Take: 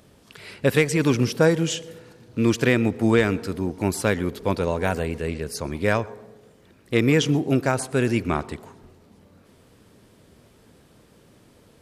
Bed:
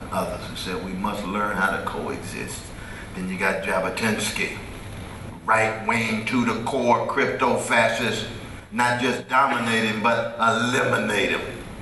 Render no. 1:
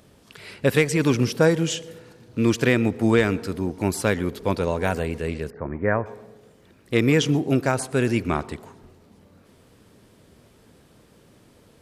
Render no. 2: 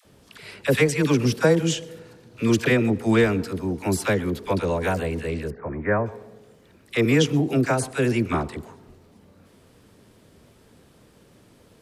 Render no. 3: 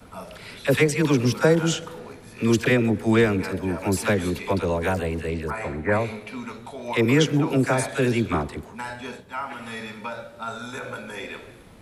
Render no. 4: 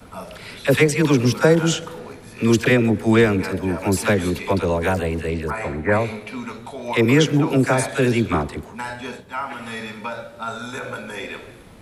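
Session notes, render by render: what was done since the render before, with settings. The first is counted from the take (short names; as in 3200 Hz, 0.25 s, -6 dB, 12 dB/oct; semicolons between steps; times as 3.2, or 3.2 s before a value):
5.5–6.06 Chebyshev low-pass 1900 Hz, order 4
dispersion lows, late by 54 ms, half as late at 690 Hz
add bed -13 dB
gain +3.5 dB; limiter -3 dBFS, peak gain reduction 1 dB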